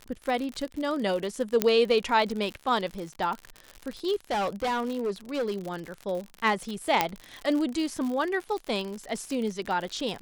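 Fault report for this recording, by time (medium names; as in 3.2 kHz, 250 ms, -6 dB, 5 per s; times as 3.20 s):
crackle 70 per s -31 dBFS
1.62 s: pop -6 dBFS
4.31–5.74 s: clipped -24.5 dBFS
7.01 s: pop -6 dBFS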